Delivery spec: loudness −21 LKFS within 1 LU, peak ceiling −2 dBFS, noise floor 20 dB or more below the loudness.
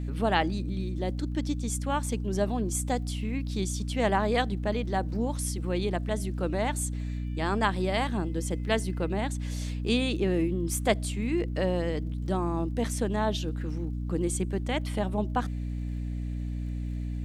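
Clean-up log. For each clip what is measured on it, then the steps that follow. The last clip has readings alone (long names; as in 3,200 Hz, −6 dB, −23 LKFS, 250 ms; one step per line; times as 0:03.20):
crackle rate 25 per second; mains hum 60 Hz; hum harmonics up to 300 Hz; level of the hum −30 dBFS; integrated loudness −30.0 LKFS; sample peak −9.5 dBFS; target loudness −21.0 LKFS
→ click removal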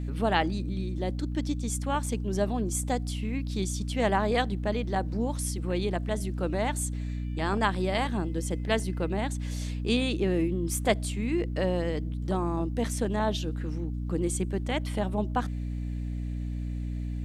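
crackle rate 0.29 per second; mains hum 60 Hz; hum harmonics up to 300 Hz; level of the hum −30 dBFS
→ mains-hum notches 60/120/180/240/300 Hz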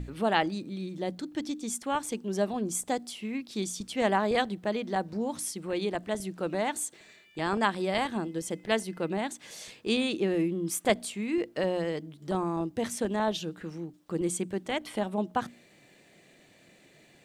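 mains hum none found; integrated loudness −31.0 LKFS; sample peak −10.0 dBFS; target loudness −21.0 LKFS
→ level +10 dB
brickwall limiter −2 dBFS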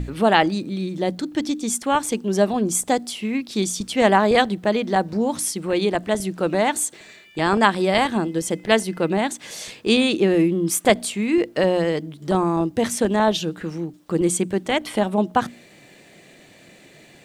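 integrated loudness −21.0 LKFS; sample peak −2.0 dBFS; background noise floor −50 dBFS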